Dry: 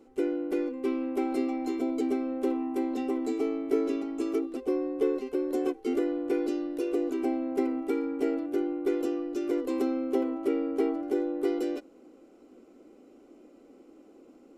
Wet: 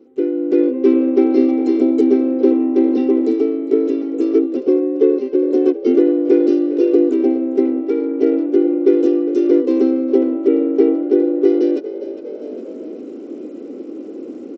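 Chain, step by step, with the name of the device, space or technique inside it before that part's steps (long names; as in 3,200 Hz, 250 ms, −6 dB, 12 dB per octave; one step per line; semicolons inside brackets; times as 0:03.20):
0:07.88–0:08.54: high-pass filter 320 Hz → 150 Hz 12 dB per octave
low shelf with overshoot 580 Hz +9 dB, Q 1.5
echo with shifted repeats 406 ms, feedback 38%, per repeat +46 Hz, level −16 dB
Bluetooth headset (high-pass filter 210 Hz 12 dB per octave; automatic gain control gain up to 15 dB; downsampling to 16,000 Hz; level −1 dB; SBC 64 kbit/s 32,000 Hz)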